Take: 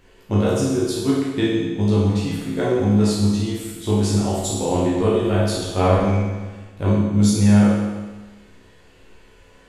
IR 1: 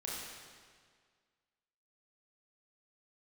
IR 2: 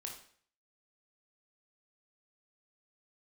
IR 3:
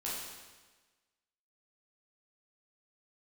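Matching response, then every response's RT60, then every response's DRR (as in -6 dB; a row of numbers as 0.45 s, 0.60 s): 3; 1.8 s, 0.55 s, 1.3 s; -5.5 dB, 0.5 dB, -7.5 dB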